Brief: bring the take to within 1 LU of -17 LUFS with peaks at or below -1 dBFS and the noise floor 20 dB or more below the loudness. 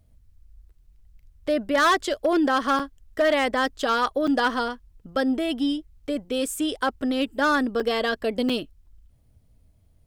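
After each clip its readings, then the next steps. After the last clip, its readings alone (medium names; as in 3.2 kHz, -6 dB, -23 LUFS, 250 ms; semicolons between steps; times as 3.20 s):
clipped samples 0.8%; clipping level -15.0 dBFS; dropouts 4; longest dropout 5.5 ms; loudness -24.0 LUFS; peak level -15.0 dBFS; loudness target -17.0 LUFS
-> clip repair -15 dBFS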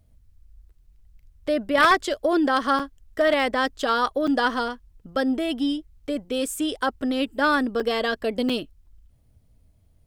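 clipped samples 0.0%; dropouts 4; longest dropout 5.5 ms
-> interpolate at 2.79/4.27/7.80/8.49 s, 5.5 ms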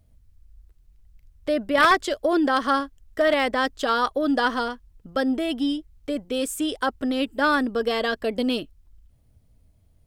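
dropouts 0; loudness -23.5 LUFS; peak level -6.0 dBFS; loudness target -17.0 LUFS
-> trim +6.5 dB; peak limiter -1 dBFS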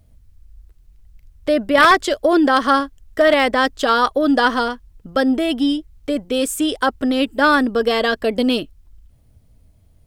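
loudness -17.5 LUFS; peak level -1.0 dBFS; noise floor -54 dBFS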